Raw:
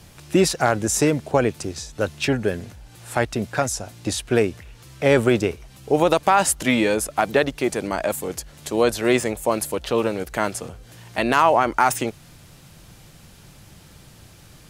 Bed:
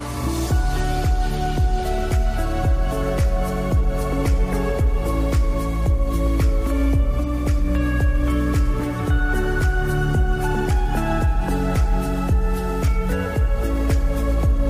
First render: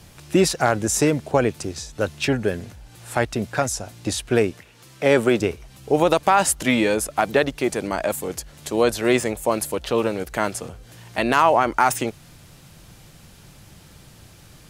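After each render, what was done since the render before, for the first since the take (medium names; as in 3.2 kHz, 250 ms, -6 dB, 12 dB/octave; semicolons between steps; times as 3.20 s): 4.51–5.40 s: high-pass 160 Hz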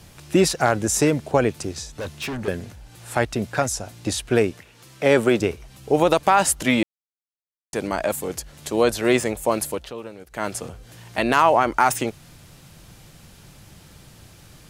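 1.99–2.48 s: hard clipper -26.5 dBFS; 6.83–7.73 s: mute; 9.68–10.55 s: dip -14 dB, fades 0.26 s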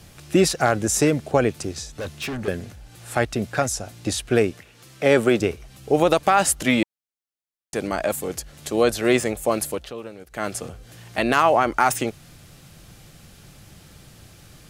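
band-stop 950 Hz, Q 9.1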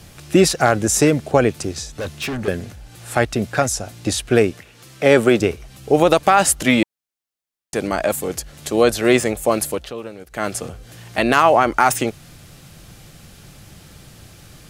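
trim +4 dB; peak limiter -1 dBFS, peak gain reduction 1 dB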